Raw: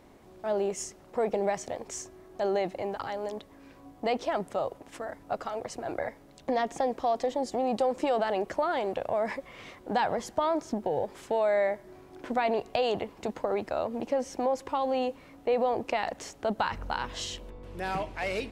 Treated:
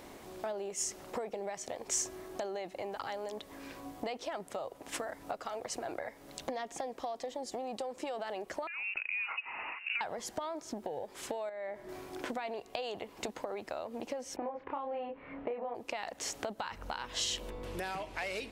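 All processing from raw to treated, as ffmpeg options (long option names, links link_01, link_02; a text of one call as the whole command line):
ffmpeg -i in.wav -filter_complex "[0:a]asettb=1/sr,asplit=3[link_01][link_02][link_03];[link_01]atrim=end=8.674[link_04];[link_02]atrim=start=8.67:end=10.01,asetpts=PTS-STARTPTS,afade=type=in:duration=0.004:curve=qsin,afade=type=out:start_time=1.336:duration=0.004:curve=qsin,highpass=390,acompressor=threshold=-40dB:ratio=2:attack=3.2:release=140:knee=1:detection=peak,lowpass=frequency=2600:width_type=q:width=0.5098,lowpass=frequency=2600:width_type=q:width=0.6013,lowpass=frequency=2600:width_type=q:width=0.9,lowpass=frequency=2600:width_type=q:width=2.563,afreqshift=-3100[link_05];[link_03]atrim=start=10.006[link_06];[link_04][link_05]acrossfade=duration=0.004:curve1=hsin:curve2=qsin[link_07];[link_07][link_06]acrossfade=duration=0.004:curve1=qsin:curve2=hsin,asettb=1/sr,asplit=3[link_08][link_09][link_10];[link_08]atrim=end=11.494[link_11];[link_09]atrim=start=11.49:end=11.89,asetpts=PTS-STARTPTS,afade=type=in:duration=0.004:curve=qsin,afade=type=out:start_time=0.396:duration=0.004:curve=qsin,highshelf=frequency=4400:gain=-11,acompressor=threshold=-34dB:ratio=3:attack=3.2:release=140:knee=1:detection=peak[link_12];[link_10]atrim=start=11.886[link_13];[link_11][link_12]acrossfade=duration=0.004:curve1=hsin:curve2=qsin[link_14];[link_14][link_13]acrossfade=duration=0.004:curve1=qsin:curve2=hsin,asettb=1/sr,asplit=3[link_15][link_16][link_17];[link_15]atrim=end=14.364[link_18];[link_16]atrim=start=14.36:end=15.75,asetpts=PTS-STARTPTS,afade=type=in:duration=0.004:curve=qsin,afade=type=out:start_time=1.386:duration=0.004:curve=qsin,lowpass=frequency=2300:width=0.5412,lowpass=frequency=2300:width=1.3066,asplit=2[link_19][link_20];[link_20]adelay=29,volume=-3dB[link_21];[link_19][link_21]amix=inputs=2:normalize=0,atrim=end_sample=61299[link_22];[link_17]atrim=start=15.746[link_23];[link_18][link_22]acrossfade=duration=0.004:curve1=hsin:curve2=qsin[link_24];[link_24][link_23]acrossfade=duration=0.004:curve1=qsin:curve2=hsin,bass=frequency=250:gain=-5,treble=frequency=4000:gain=-4,acompressor=threshold=-42dB:ratio=10,highshelf=frequency=3400:gain=11.5,volume=5.5dB" out.wav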